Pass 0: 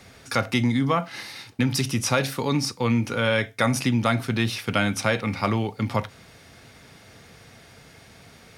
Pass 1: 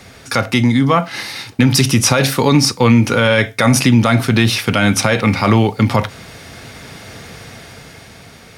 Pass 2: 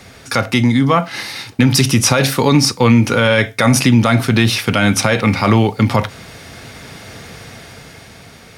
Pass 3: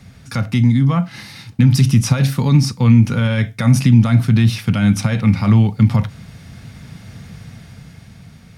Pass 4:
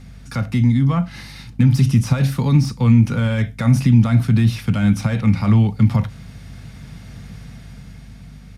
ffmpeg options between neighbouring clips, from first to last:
ffmpeg -i in.wav -filter_complex "[0:a]dynaudnorm=framelen=230:gausssize=11:maxgain=7.5dB,asplit=2[link_01][link_02];[link_02]asoftclip=type=tanh:threshold=-12dB,volume=-10.5dB[link_03];[link_01][link_03]amix=inputs=2:normalize=0,alimiter=level_in=7.5dB:limit=-1dB:release=50:level=0:latency=1,volume=-1dB" out.wav
ffmpeg -i in.wav -af anull out.wav
ffmpeg -i in.wav -af "lowshelf=frequency=260:width_type=q:width=1.5:gain=11.5,volume=-10dB" out.wav
ffmpeg -i in.wav -filter_complex "[0:a]acrossover=split=260|510|1700[link_01][link_02][link_03][link_04];[link_04]asoftclip=type=tanh:threshold=-28.5dB[link_05];[link_01][link_02][link_03][link_05]amix=inputs=4:normalize=0,aeval=exprs='val(0)+0.0141*(sin(2*PI*50*n/s)+sin(2*PI*2*50*n/s)/2+sin(2*PI*3*50*n/s)/3+sin(2*PI*4*50*n/s)/4+sin(2*PI*5*50*n/s)/5)':channel_layout=same,aresample=32000,aresample=44100,volume=-2dB" out.wav

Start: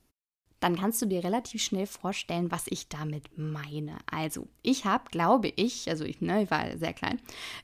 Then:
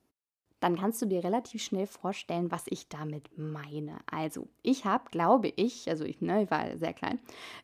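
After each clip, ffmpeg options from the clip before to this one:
ffmpeg -i in.wav -af "highpass=frequency=380:poles=1,tiltshelf=frequency=1200:gain=6.5,volume=-2dB" out.wav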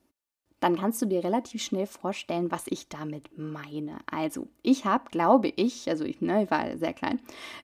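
ffmpeg -i in.wav -af "aecho=1:1:3.4:0.42,volume=3dB" out.wav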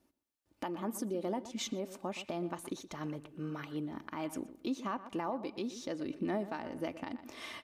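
ffmpeg -i in.wav -filter_complex "[0:a]acompressor=threshold=-29dB:ratio=2,asplit=2[link_01][link_02];[link_02]adelay=121,lowpass=frequency=2700:poles=1,volume=-14dB,asplit=2[link_03][link_04];[link_04]adelay=121,lowpass=frequency=2700:poles=1,volume=0.28,asplit=2[link_05][link_06];[link_06]adelay=121,lowpass=frequency=2700:poles=1,volume=0.28[link_07];[link_01][link_03][link_05][link_07]amix=inputs=4:normalize=0,alimiter=limit=-22.5dB:level=0:latency=1:release=377,volume=-3.5dB" out.wav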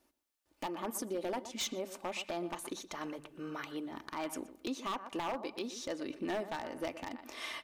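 ffmpeg -i in.wav -af "equalizer=frequency=140:width_type=o:width=2.4:gain=-11.5,bandreject=frequency=50:width_type=h:width=6,bandreject=frequency=100:width_type=h:width=6,bandreject=frequency=150:width_type=h:width=6,bandreject=frequency=200:width_type=h:width=6,aeval=exprs='0.0224*(abs(mod(val(0)/0.0224+3,4)-2)-1)':channel_layout=same,volume=4dB" out.wav

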